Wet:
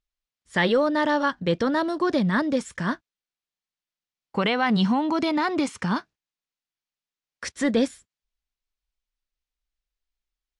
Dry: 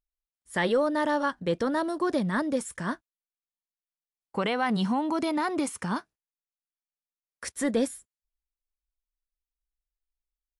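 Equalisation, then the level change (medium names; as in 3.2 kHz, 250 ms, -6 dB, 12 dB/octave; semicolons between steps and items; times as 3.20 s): distance through air 140 m; peaking EQ 140 Hz +4.5 dB 2.1 oct; treble shelf 2.2 kHz +11.5 dB; +2.0 dB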